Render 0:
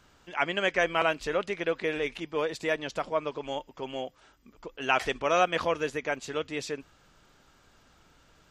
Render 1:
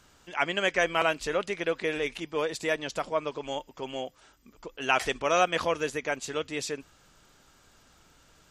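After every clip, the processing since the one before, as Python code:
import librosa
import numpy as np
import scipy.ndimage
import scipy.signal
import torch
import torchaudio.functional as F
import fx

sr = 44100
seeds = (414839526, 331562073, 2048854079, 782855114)

y = fx.peak_eq(x, sr, hz=9600.0, db=8.0, octaves=1.5)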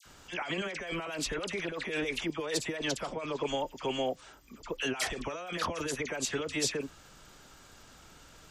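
y = fx.over_compress(x, sr, threshold_db=-34.0, ratio=-1.0)
y = fx.dispersion(y, sr, late='lows', ms=56.0, hz=1600.0)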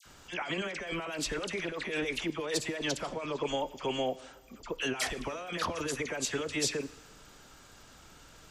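y = fx.rev_plate(x, sr, seeds[0], rt60_s=1.4, hf_ratio=0.95, predelay_ms=0, drr_db=17.0)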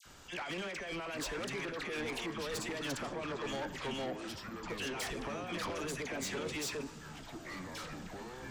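y = 10.0 ** (-34.5 / 20.0) * np.tanh(x / 10.0 ** (-34.5 / 20.0))
y = fx.echo_pitch(y, sr, ms=681, semitones=-6, count=3, db_per_echo=-6.0)
y = y * 10.0 ** (-1.0 / 20.0)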